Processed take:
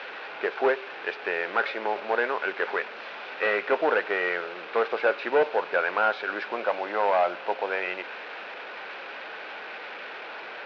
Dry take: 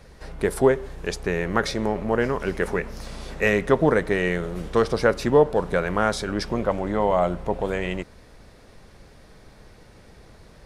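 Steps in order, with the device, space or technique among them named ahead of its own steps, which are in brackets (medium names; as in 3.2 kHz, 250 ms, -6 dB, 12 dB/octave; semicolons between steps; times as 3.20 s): digital answering machine (band-pass 300–3100 Hz; one-bit delta coder 32 kbps, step -33.5 dBFS; cabinet simulation 460–3800 Hz, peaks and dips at 820 Hz +4 dB, 1.5 kHz +8 dB, 2.5 kHz +8 dB); trim -1 dB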